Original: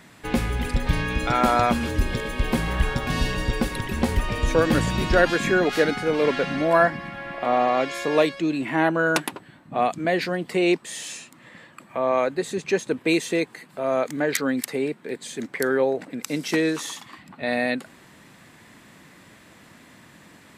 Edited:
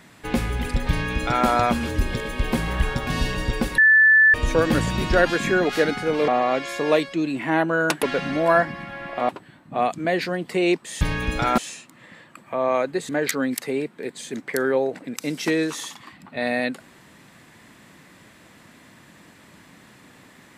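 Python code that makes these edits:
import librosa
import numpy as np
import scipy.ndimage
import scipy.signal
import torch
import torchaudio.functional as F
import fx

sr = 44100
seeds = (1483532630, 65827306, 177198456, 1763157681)

y = fx.edit(x, sr, fx.duplicate(start_s=0.89, length_s=0.57, to_s=11.01),
    fx.bleep(start_s=3.78, length_s=0.56, hz=1750.0, db=-10.5),
    fx.move(start_s=6.28, length_s=1.26, to_s=9.29),
    fx.cut(start_s=12.52, length_s=1.63), tone=tone)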